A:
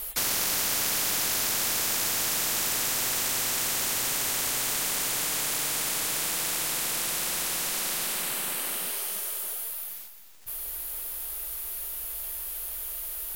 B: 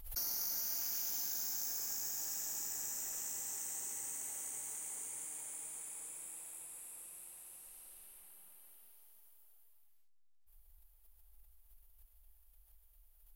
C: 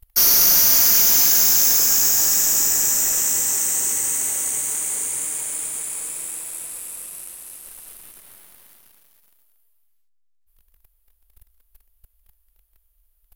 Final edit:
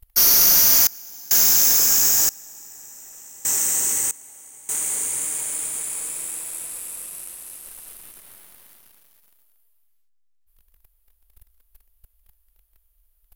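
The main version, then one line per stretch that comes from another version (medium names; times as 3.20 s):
C
0.87–1.31 s: from B
2.29–3.45 s: from B
4.11–4.69 s: from B
not used: A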